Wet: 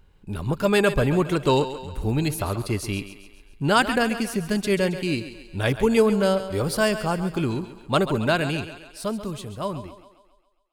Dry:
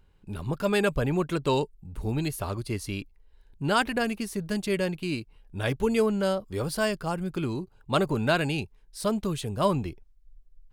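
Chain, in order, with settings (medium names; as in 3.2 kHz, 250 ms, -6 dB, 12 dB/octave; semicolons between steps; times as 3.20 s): fade out at the end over 3.31 s; thinning echo 136 ms, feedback 54%, high-pass 240 Hz, level -11.5 dB; trim +5 dB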